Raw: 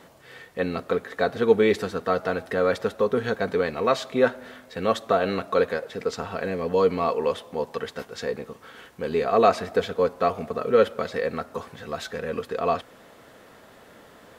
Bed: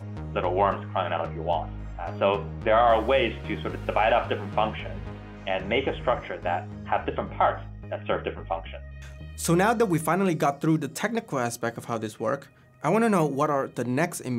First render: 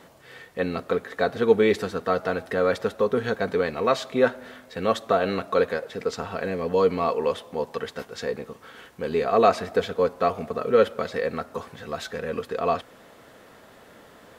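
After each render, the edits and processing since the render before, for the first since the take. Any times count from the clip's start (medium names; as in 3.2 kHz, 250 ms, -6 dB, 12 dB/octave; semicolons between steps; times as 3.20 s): no audible change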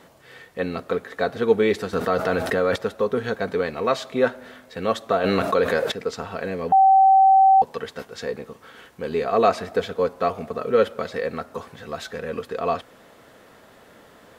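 1.93–2.76 s: level flattener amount 70%; 5.24–5.92 s: level flattener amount 70%; 6.72–7.62 s: bleep 771 Hz -10.5 dBFS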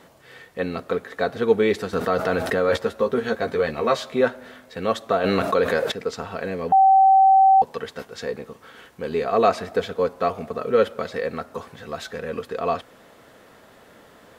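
2.67–4.21 s: doubling 13 ms -4.5 dB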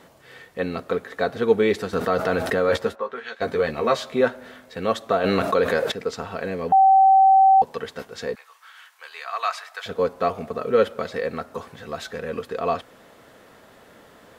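2.94–3.40 s: band-pass filter 870 Hz -> 3.6 kHz, Q 1.2; 8.35–9.86 s: high-pass 1 kHz 24 dB/octave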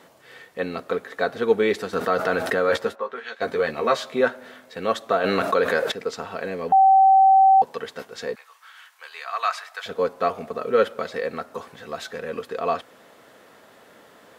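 high-pass 230 Hz 6 dB/octave; dynamic bell 1.5 kHz, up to +3 dB, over -32 dBFS, Q 2.4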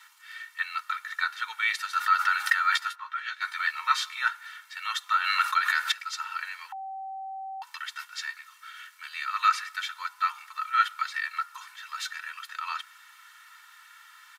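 steep high-pass 1.1 kHz 48 dB/octave; comb 2.2 ms, depth 94%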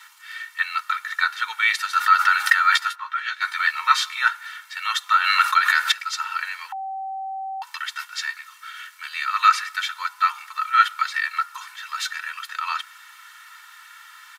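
trim +7 dB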